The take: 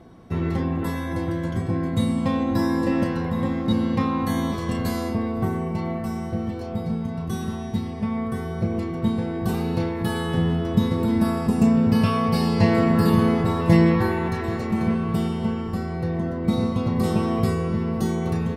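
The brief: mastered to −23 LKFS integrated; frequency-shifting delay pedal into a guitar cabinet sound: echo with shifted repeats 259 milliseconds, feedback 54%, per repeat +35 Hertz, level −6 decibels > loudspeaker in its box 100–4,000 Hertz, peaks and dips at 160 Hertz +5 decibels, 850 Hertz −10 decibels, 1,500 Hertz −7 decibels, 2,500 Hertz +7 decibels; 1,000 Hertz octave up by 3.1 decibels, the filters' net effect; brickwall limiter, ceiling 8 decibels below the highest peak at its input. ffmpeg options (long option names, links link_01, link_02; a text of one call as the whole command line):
ffmpeg -i in.wav -filter_complex "[0:a]equalizer=frequency=1000:width_type=o:gain=8.5,alimiter=limit=-11dB:level=0:latency=1,asplit=8[link_01][link_02][link_03][link_04][link_05][link_06][link_07][link_08];[link_02]adelay=259,afreqshift=35,volume=-6dB[link_09];[link_03]adelay=518,afreqshift=70,volume=-11.4dB[link_10];[link_04]adelay=777,afreqshift=105,volume=-16.7dB[link_11];[link_05]adelay=1036,afreqshift=140,volume=-22.1dB[link_12];[link_06]adelay=1295,afreqshift=175,volume=-27.4dB[link_13];[link_07]adelay=1554,afreqshift=210,volume=-32.8dB[link_14];[link_08]adelay=1813,afreqshift=245,volume=-38.1dB[link_15];[link_01][link_09][link_10][link_11][link_12][link_13][link_14][link_15]amix=inputs=8:normalize=0,highpass=100,equalizer=frequency=160:width_type=q:width=4:gain=5,equalizer=frequency=850:width_type=q:width=4:gain=-10,equalizer=frequency=1500:width_type=q:width=4:gain=-7,equalizer=frequency=2500:width_type=q:width=4:gain=7,lowpass=frequency=4000:width=0.5412,lowpass=frequency=4000:width=1.3066,volume=-1.5dB" out.wav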